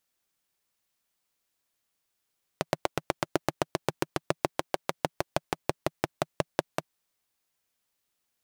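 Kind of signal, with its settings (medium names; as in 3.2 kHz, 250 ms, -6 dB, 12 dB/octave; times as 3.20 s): single-cylinder engine model, changing speed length 4.28 s, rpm 1000, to 600, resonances 160/350/570 Hz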